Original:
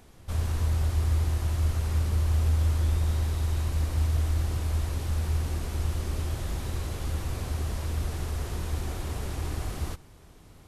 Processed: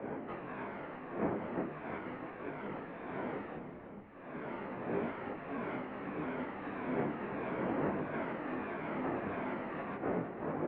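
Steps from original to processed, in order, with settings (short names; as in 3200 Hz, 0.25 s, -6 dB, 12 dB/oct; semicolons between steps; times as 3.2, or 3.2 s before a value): moving spectral ripple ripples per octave 1.8, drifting -1.6 Hz, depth 7 dB; wind noise 440 Hz -36 dBFS; 3.56–4.04 tilt -4 dB/oct; compressor 6:1, threshold -31 dBFS, peak gain reduction 24.5 dB; feedback echo 0.325 s, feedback 48%, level -11 dB; mistuned SSB -99 Hz 300–2400 Hz; detuned doubles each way 13 cents; gain +9.5 dB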